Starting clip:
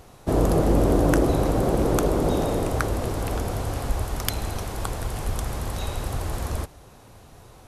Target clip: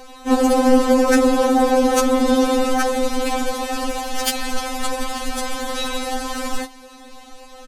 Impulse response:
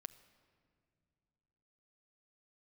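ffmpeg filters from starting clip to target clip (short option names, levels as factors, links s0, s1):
-filter_complex "[0:a]adynamicsmooth=sensitivity=0.5:basefreq=4300,crystalizer=i=4:c=0,acontrast=56,asplit=3[s0][s1][s2];[s1]asetrate=35002,aresample=44100,atempo=1.25992,volume=0.178[s3];[s2]asetrate=58866,aresample=44100,atempo=0.749154,volume=0.2[s4];[s0][s3][s4]amix=inputs=3:normalize=0,afftfilt=real='re*3.46*eq(mod(b,12),0)':imag='im*3.46*eq(mod(b,12),0)':win_size=2048:overlap=0.75,volume=1.5"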